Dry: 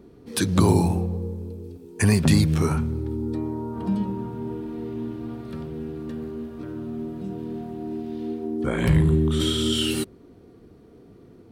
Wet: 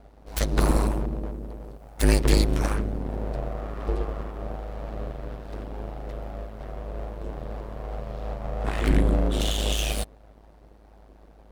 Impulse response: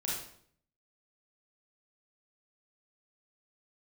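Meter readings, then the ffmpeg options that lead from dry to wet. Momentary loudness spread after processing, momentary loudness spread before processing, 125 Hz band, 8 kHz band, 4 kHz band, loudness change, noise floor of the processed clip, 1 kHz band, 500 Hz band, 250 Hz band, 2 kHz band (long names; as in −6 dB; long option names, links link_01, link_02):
16 LU, 15 LU, −5.5 dB, −2.0 dB, −4.0 dB, −3.5 dB, −52 dBFS, −0.5 dB, −2.5 dB, −7.0 dB, −1.5 dB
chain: -af "aeval=exprs='abs(val(0))':channel_layout=same,aeval=exprs='val(0)*sin(2*PI*52*n/s)':channel_layout=same,volume=1.5dB"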